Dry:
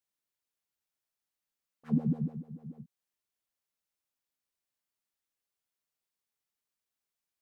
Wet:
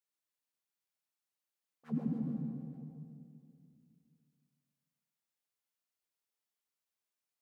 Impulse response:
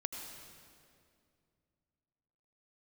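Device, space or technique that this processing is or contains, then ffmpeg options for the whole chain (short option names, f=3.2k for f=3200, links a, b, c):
stairwell: -filter_complex "[1:a]atrim=start_sample=2205[a];[0:a][a]afir=irnorm=-1:irlink=0,highpass=f=210:p=1,volume=-2.5dB"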